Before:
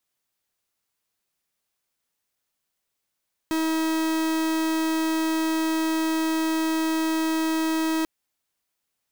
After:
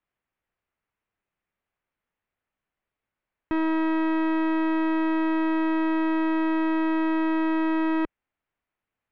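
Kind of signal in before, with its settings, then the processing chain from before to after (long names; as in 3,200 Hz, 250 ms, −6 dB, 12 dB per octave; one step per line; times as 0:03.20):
pulse wave 320 Hz, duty 44% −24 dBFS 4.54 s
low-pass filter 2,500 Hz 24 dB per octave
low-shelf EQ 77 Hz +8.5 dB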